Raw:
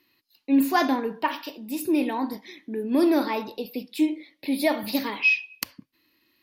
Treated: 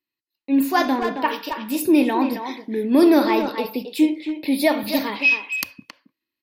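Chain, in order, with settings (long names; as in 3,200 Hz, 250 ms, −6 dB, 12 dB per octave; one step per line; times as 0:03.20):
noise gate with hold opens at −44 dBFS
far-end echo of a speakerphone 270 ms, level −7 dB
speech leveller 2 s
level +3.5 dB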